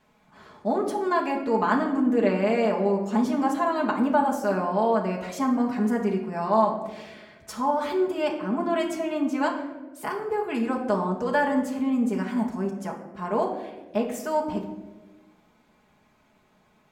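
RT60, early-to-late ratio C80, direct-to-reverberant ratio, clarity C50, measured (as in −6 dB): 1.2 s, 9.5 dB, −2.0 dB, 7.0 dB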